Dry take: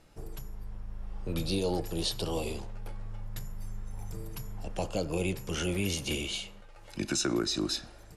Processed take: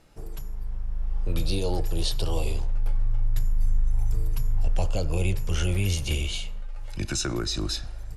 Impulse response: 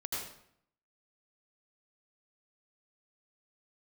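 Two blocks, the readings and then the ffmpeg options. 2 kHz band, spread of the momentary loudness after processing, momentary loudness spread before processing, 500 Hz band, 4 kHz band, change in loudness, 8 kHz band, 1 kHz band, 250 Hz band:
+2.0 dB, 10 LU, 15 LU, 0.0 dB, +2.0 dB, +4.5 dB, +2.0 dB, +1.5 dB, −1.0 dB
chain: -af "acontrast=78,asubboost=boost=8.5:cutoff=81,volume=-5dB"

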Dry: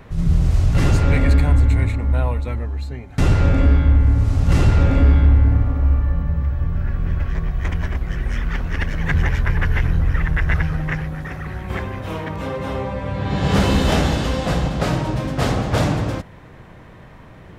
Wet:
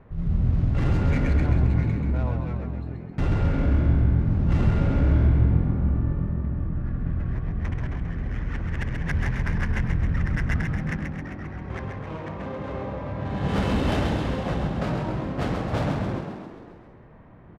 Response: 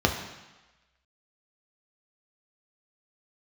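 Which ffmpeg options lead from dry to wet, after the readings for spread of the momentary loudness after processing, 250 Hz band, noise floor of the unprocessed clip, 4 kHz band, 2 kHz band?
12 LU, −4.0 dB, −42 dBFS, −10.5 dB, −7.5 dB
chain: -filter_complex "[0:a]adynamicsmooth=sensitivity=2:basefreq=1600,asplit=9[link_01][link_02][link_03][link_04][link_05][link_06][link_07][link_08][link_09];[link_02]adelay=133,afreqshift=43,volume=-5.5dB[link_10];[link_03]adelay=266,afreqshift=86,volume=-10.1dB[link_11];[link_04]adelay=399,afreqshift=129,volume=-14.7dB[link_12];[link_05]adelay=532,afreqshift=172,volume=-19.2dB[link_13];[link_06]adelay=665,afreqshift=215,volume=-23.8dB[link_14];[link_07]adelay=798,afreqshift=258,volume=-28.4dB[link_15];[link_08]adelay=931,afreqshift=301,volume=-33dB[link_16];[link_09]adelay=1064,afreqshift=344,volume=-37.6dB[link_17];[link_01][link_10][link_11][link_12][link_13][link_14][link_15][link_16][link_17]amix=inputs=9:normalize=0,volume=-8dB"

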